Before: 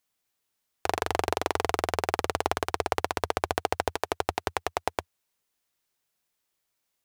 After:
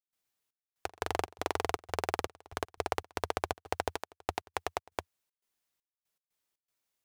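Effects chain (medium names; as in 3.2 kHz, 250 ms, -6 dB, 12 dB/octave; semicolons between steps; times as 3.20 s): trance gate ".xxx..x.xx.xxx" 119 bpm -24 dB; trim -5 dB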